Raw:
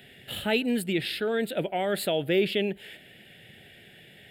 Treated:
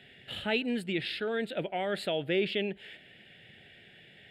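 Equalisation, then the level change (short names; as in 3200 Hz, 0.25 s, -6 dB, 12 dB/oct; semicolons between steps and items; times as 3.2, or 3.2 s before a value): tape spacing loss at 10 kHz 21 dB; tilt shelf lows -5 dB, about 1400 Hz; 0.0 dB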